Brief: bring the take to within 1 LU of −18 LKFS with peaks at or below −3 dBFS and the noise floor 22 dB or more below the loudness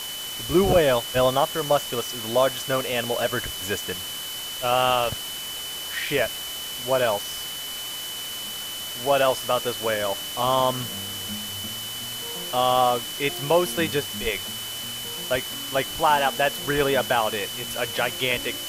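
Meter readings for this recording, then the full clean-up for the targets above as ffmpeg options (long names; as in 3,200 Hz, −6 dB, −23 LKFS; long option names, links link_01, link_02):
interfering tone 3,000 Hz; level of the tone −33 dBFS; background noise floor −33 dBFS; target noise floor −47 dBFS; integrated loudness −24.5 LKFS; sample peak −7.0 dBFS; target loudness −18.0 LKFS
→ -af "bandreject=frequency=3000:width=30"
-af "afftdn=noise_reduction=14:noise_floor=-33"
-af "volume=6.5dB,alimiter=limit=-3dB:level=0:latency=1"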